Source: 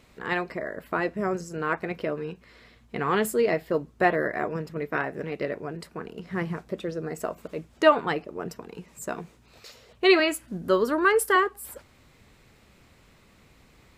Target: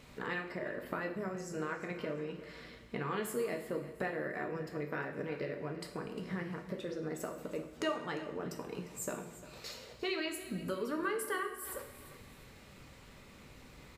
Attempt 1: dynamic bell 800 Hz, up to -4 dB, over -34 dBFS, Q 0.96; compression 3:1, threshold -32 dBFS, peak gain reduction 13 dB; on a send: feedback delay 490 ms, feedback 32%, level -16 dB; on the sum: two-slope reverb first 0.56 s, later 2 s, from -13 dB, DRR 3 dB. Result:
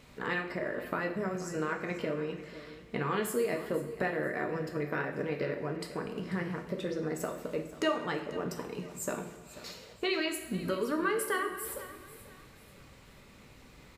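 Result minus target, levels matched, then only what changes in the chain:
echo 139 ms late; compression: peak gain reduction -5 dB
change: compression 3:1, threshold -39.5 dBFS, peak gain reduction 18 dB; change: feedback delay 351 ms, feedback 32%, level -16 dB

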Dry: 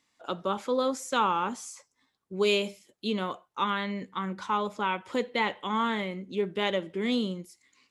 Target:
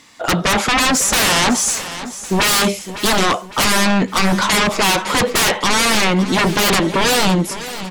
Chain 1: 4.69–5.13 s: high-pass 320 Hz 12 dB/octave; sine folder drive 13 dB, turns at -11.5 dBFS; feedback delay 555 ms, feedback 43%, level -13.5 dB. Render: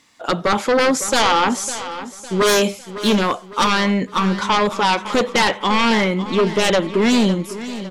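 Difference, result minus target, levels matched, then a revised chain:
sine folder: distortion -16 dB
4.69–5.13 s: high-pass 320 Hz 12 dB/octave; sine folder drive 22 dB, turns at -11.5 dBFS; feedback delay 555 ms, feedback 43%, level -13.5 dB

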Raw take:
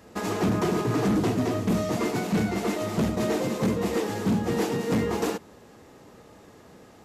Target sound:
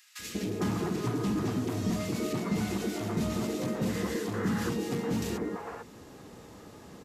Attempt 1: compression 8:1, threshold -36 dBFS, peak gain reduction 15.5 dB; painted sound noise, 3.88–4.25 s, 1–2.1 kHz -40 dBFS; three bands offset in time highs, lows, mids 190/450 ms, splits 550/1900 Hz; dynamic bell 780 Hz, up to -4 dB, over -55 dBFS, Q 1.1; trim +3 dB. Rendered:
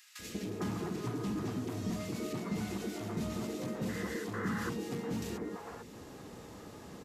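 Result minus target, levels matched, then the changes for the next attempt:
compression: peak gain reduction +6 dB
change: compression 8:1, threshold -29 dBFS, peak gain reduction 9 dB

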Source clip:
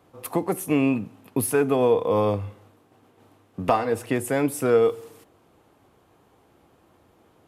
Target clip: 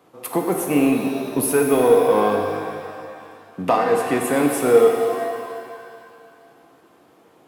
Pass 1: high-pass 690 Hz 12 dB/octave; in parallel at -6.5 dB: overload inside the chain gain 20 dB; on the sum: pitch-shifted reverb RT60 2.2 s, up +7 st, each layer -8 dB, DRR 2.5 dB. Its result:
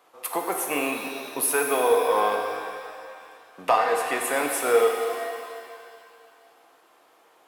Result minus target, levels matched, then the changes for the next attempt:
250 Hz band -9.0 dB
change: high-pass 180 Hz 12 dB/octave

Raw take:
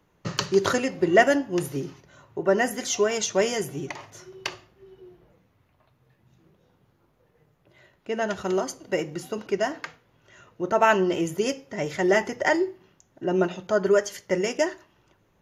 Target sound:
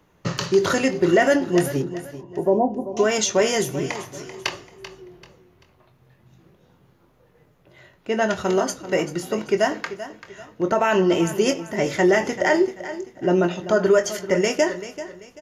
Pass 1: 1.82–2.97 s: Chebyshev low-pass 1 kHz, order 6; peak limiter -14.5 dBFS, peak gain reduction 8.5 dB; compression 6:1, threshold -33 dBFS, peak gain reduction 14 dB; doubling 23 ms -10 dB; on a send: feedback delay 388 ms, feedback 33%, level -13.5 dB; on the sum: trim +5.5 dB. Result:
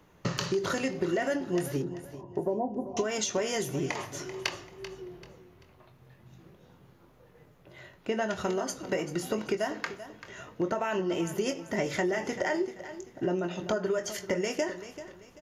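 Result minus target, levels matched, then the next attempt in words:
compression: peak gain reduction +14 dB
1.82–2.97 s: Chebyshev low-pass 1 kHz, order 6; peak limiter -14.5 dBFS, peak gain reduction 8.5 dB; doubling 23 ms -10 dB; on a send: feedback delay 388 ms, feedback 33%, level -13.5 dB; on the sum: trim +5.5 dB

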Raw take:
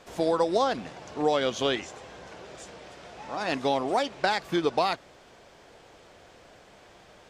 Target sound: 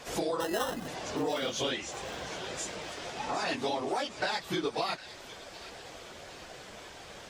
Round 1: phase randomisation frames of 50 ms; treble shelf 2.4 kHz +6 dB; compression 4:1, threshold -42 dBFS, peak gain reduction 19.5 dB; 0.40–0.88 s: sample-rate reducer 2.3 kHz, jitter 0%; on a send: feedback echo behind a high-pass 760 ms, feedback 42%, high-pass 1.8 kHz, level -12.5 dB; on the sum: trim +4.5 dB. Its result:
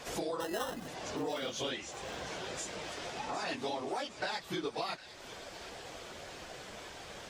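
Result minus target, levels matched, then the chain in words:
compression: peak gain reduction +5 dB
phase randomisation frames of 50 ms; treble shelf 2.4 kHz +6 dB; compression 4:1, threshold -35.5 dBFS, peak gain reduction 15 dB; 0.40–0.88 s: sample-rate reducer 2.3 kHz, jitter 0%; on a send: feedback echo behind a high-pass 760 ms, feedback 42%, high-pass 1.8 kHz, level -12.5 dB; on the sum: trim +4.5 dB

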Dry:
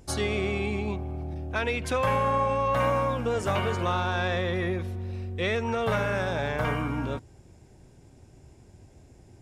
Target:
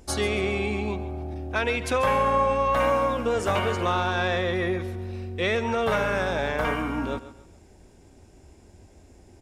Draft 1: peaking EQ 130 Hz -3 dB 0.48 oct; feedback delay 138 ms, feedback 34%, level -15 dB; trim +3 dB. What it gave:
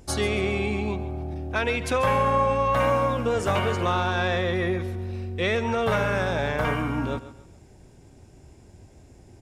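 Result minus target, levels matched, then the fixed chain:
125 Hz band +3.0 dB
peaking EQ 130 Hz -14 dB 0.48 oct; feedback delay 138 ms, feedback 34%, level -15 dB; trim +3 dB

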